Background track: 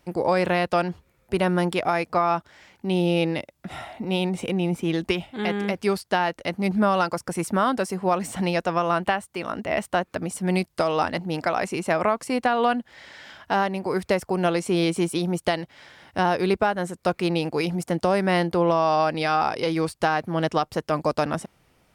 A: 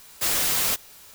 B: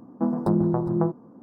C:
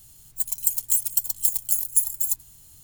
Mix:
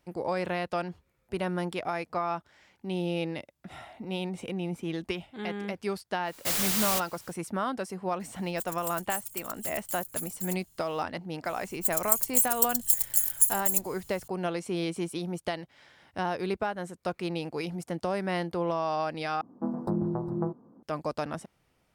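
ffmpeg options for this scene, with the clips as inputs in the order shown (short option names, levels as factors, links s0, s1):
-filter_complex "[3:a]asplit=2[s0][s1];[0:a]volume=0.355[s2];[s0]volume=6.68,asoftclip=hard,volume=0.15[s3];[s2]asplit=2[s4][s5];[s4]atrim=end=19.414[s6];[2:a]atrim=end=1.42,asetpts=PTS-STARTPTS,volume=0.422[s7];[s5]atrim=start=20.826[s8];[1:a]atrim=end=1.14,asetpts=PTS-STARTPTS,volume=0.562,afade=t=in:d=0.1,afade=t=out:st=1.04:d=0.1,adelay=6240[s9];[s3]atrim=end=2.83,asetpts=PTS-STARTPTS,volume=0.251,afade=t=in:d=0.004:c=hsin,afade=t=out:st=2.826:d=0.004:c=hsin,adelay=8200[s10];[s1]atrim=end=2.83,asetpts=PTS-STARTPTS,volume=0.794,afade=t=in:d=0.004:c=hsin,afade=t=out:st=2.826:d=0.004:c=hsin,adelay=11450[s11];[s6][s7]acrossfade=d=0.004:c1=hsin:c2=hsin[s12];[s12][s8]acrossfade=d=0.004:c1=hsin:c2=hsin[s13];[s13][s9][s10][s11]amix=inputs=4:normalize=0"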